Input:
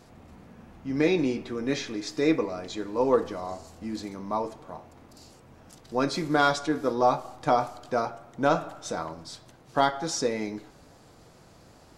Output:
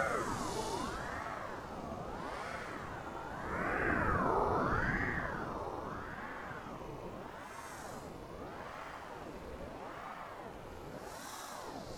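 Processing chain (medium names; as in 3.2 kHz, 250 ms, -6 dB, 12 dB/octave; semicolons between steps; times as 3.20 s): Paulstretch 18×, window 0.05 s, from 4.49 s; ring modulator with a swept carrier 610 Hz, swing 65%, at 0.79 Hz; trim +8.5 dB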